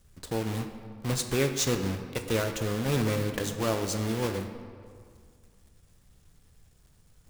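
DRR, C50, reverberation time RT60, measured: 6.0 dB, 8.0 dB, 2.1 s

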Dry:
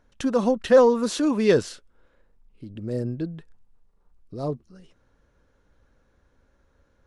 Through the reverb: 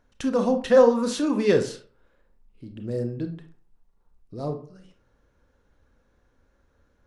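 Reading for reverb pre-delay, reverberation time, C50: 26 ms, 0.45 s, 10.0 dB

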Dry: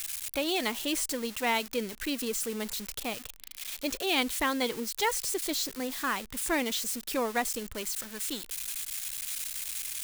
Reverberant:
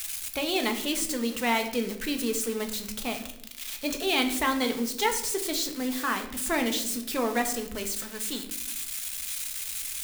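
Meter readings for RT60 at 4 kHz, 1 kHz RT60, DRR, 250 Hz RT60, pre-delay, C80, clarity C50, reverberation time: 0.55 s, 0.65 s, 4.0 dB, 1.2 s, 5 ms, 13.0 dB, 10.0 dB, 0.80 s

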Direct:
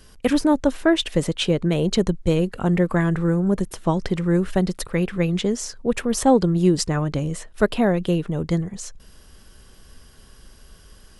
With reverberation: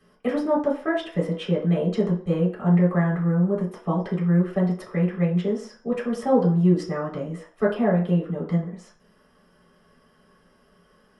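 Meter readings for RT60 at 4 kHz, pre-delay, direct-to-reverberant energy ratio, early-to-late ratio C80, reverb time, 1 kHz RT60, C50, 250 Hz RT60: 0.45 s, 3 ms, −6.0 dB, 12.5 dB, 0.45 s, 0.50 s, 8.0 dB, 0.45 s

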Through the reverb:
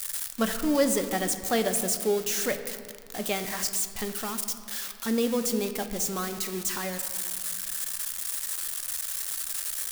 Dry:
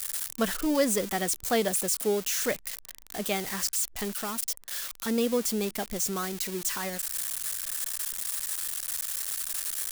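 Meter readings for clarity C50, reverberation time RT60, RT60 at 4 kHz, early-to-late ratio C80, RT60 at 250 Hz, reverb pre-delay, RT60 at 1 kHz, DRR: 9.5 dB, 2.1 s, 1.1 s, 10.5 dB, 2.6 s, 4 ms, 2.2 s, 7.5 dB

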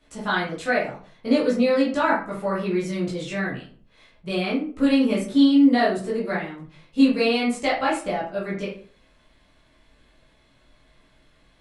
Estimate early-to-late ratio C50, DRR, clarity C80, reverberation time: 5.5 dB, −8.0 dB, 11.0 dB, 0.45 s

